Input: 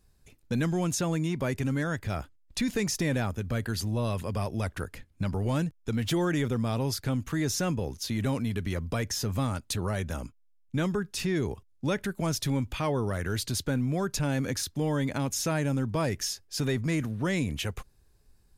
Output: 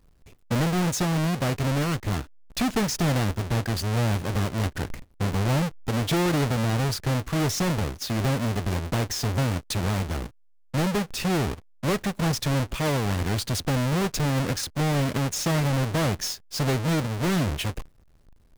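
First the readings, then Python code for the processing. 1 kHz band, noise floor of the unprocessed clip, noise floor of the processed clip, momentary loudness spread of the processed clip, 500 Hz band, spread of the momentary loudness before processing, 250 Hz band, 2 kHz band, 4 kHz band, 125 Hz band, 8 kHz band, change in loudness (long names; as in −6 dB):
+6.5 dB, −62 dBFS, −56 dBFS, 6 LU, +3.0 dB, 5 LU, +3.0 dB, +4.5 dB, +5.0 dB, +5.5 dB, +2.5 dB, +4.0 dB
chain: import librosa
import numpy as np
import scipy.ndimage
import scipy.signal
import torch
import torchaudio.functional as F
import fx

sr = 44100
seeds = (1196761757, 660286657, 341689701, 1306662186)

y = fx.halfwave_hold(x, sr)
y = fx.doppler_dist(y, sr, depth_ms=0.41)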